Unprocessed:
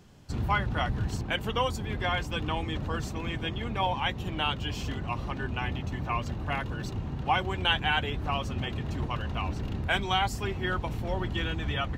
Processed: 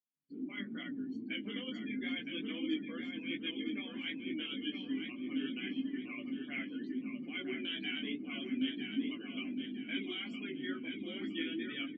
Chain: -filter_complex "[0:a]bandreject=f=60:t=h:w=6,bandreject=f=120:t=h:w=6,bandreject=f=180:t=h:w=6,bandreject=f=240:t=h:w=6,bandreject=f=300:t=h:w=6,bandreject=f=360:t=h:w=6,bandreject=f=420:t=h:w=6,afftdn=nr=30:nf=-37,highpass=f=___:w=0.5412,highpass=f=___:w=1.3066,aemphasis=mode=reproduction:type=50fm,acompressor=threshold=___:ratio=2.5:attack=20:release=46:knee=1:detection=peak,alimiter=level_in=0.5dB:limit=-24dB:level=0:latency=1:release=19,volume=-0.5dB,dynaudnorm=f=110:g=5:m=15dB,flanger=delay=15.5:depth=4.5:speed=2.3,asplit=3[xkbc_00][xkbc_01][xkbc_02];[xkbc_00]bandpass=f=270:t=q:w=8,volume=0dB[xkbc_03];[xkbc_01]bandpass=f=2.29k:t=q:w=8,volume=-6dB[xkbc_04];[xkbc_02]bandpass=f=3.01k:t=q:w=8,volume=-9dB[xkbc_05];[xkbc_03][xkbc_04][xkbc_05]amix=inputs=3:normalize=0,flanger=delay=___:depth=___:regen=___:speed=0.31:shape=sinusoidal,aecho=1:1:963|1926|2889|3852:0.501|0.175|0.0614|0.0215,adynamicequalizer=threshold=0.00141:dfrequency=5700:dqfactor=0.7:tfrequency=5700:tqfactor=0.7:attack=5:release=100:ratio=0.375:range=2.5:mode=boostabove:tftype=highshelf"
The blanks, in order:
210, 210, -32dB, 1.2, 8.6, 42